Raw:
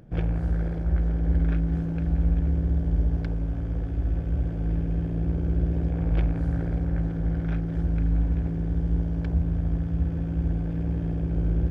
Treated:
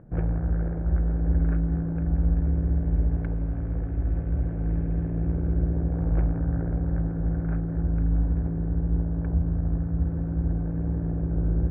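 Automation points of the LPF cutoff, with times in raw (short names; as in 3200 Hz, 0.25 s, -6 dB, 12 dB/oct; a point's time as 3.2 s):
LPF 24 dB/oct
2.29 s 1700 Hz
2.89 s 2100 Hz
5.23 s 2100 Hz
5.87 s 1600 Hz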